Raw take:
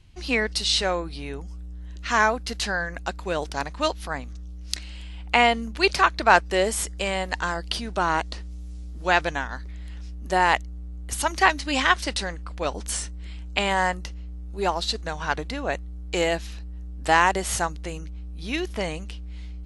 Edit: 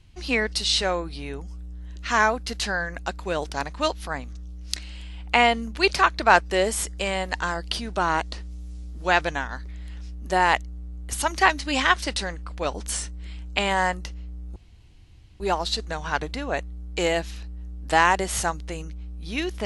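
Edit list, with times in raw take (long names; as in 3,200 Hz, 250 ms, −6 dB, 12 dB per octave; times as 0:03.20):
0:14.56: splice in room tone 0.84 s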